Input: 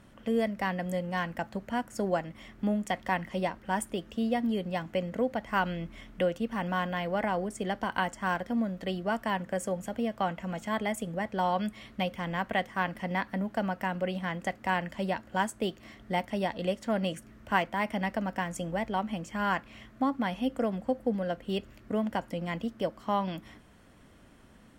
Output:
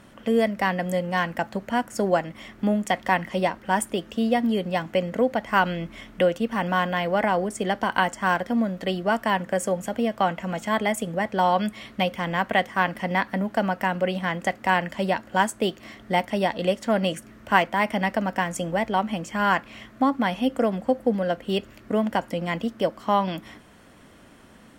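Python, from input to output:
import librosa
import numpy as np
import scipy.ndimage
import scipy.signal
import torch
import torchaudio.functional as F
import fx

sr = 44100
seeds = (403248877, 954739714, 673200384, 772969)

y = fx.low_shelf(x, sr, hz=120.0, db=-9.0)
y = y * 10.0 ** (8.0 / 20.0)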